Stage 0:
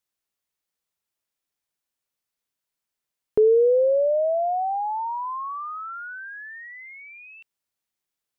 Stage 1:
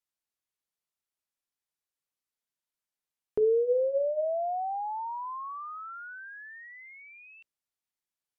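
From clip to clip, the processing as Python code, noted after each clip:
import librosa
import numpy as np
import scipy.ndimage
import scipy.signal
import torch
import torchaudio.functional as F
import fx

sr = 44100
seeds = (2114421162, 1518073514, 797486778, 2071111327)

y = fx.hum_notches(x, sr, base_hz=60, count=10)
y = fx.env_lowpass_down(y, sr, base_hz=1400.0, full_db=-17.5)
y = y * 10.0 ** (-7.0 / 20.0)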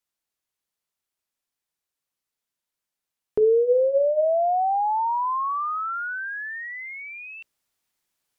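y = fx.rider(x, sr, range_db=4, speed_s=2.0)
y = y * 10.0 ** (9.0 / 20.0)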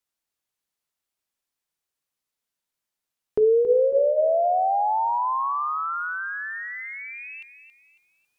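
y = fx.echo_feedback(x, sr, ms=275, feedback_pct=34, wet_db=-11)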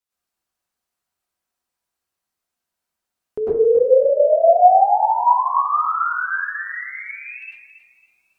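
y = fx.rev_plate(x, sr, seeds[0], rt60_s=0.56, hf_ratio=0.4, predelay_ms=90, drr_db=-9.5)
y = y * 10.0 ** (-4.5 / 20.0)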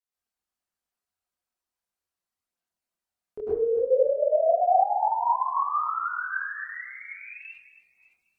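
y = fx.chorus_voices(x, sr, voices=4, hz=1.4, base_ms=24, depth_ms=3.0, mix_pct=55)
y = y * 10.0 ** (-5.0 / 20.0)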